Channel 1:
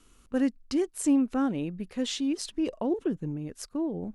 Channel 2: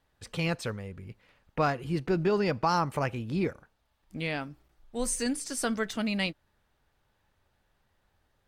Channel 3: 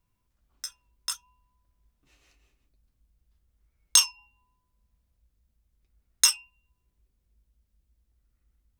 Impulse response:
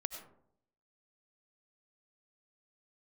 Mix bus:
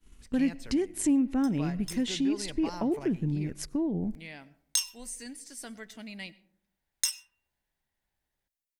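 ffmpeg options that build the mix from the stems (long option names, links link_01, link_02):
-filter_complex "[0:a]agate=range=-33dB:threshold=-52dB:ratio=3:detection=peak,bass=frequency=250:gain=9,treble=frequency=4000:gain=-6,volume=2.5dB,asplit=2[link_01][link_02];[link_02]volume=-20.5dB[link_03];[1:a]volume=-15.5dB,asplit=2[link_04][link_05];[link_05]volume=-10dB[link_06];[2:a]highpass=700,adelay=800,volume=-12.5dB,asplit=2[link_07][link_08];[link_08]volume=-12.5dB[link_09];[link_01][link_07]amix=inputs=2:normalize=0,acompressor=threshold=-31dB:ratio=2,volume=0dB[link_10];[3:a]atrim=start_sample=2205[link_11];[link_03][link_06][link_09]amix=inputs=3:normalize=0[link_12];[link_12][link_11]afir=irnorm=-1:irlink=0[link_13];[link_04][link_10][link_13]amix=inputs=3:normalize=0,equalizer=frequency=100:width_type=o:width=0.33:gain=-9,equalizer=frequency=500:width_type=o:width=0.33:gain=-5,equalizer=frequency=1250:width_type=o:width=0.33:gain=-8,equalizer=frequency=2000:width_type=o:width=0.33:gain=5,highshelf=frequency=5100:gain=6.5"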